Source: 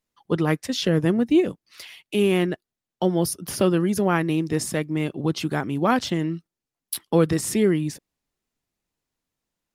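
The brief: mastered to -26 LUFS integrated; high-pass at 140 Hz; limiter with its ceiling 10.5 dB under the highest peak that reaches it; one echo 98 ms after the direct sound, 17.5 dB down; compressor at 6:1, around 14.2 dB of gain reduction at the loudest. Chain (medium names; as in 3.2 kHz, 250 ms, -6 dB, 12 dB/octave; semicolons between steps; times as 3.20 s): high-pass 140 Hz; compression 6:1, threshold -29 dBFS; peak limiter -23.5 dBFS; delay 98 ms -17.5 dB; trim +8.5 dB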